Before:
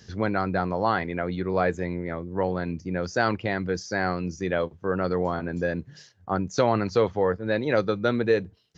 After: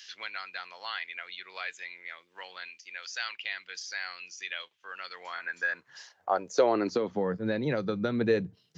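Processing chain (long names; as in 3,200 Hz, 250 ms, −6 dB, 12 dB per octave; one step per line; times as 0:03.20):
0:02.68–0:03.37: low-shelf EQ 290 Hz −11 dB
0:06.91–0:08.21: downward compressor, threshold −24 dBFS, peak gain reduction 8 dB
high-pass filter sweep 2,900 Hz → 150 Hz, 0:05.12–0:07.42
multiband upward and downward compressor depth 40%
level −2.5 dB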